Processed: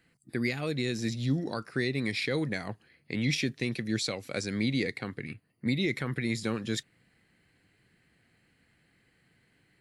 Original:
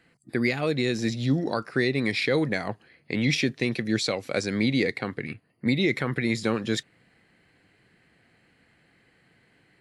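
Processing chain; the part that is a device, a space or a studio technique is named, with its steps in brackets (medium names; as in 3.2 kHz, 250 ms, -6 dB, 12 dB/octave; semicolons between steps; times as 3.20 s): smiley-face EQ (bass shelf 130 Hz +5 dB; peaking EQ 680 Hz -3.5 dB 1.7 oct; treble shelf 8.3 kHz +8.5 dB); trim -5.5 dB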